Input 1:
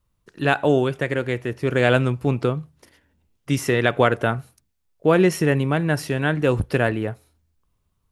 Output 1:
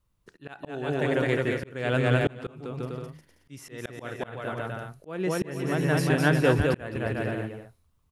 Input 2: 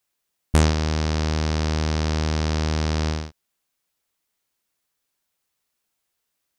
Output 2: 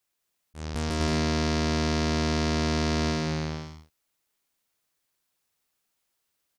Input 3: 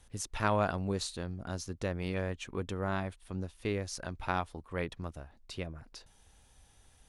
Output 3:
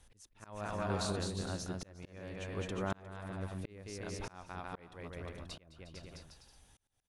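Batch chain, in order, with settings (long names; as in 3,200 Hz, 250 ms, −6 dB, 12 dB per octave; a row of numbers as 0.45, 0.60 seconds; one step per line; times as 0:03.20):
bouncing-ball delay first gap 210 ms, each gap 0.7×, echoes 5
volume swells 623 ms
level −2.5 dB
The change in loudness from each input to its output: −6.0, −3.5, −5.5 LU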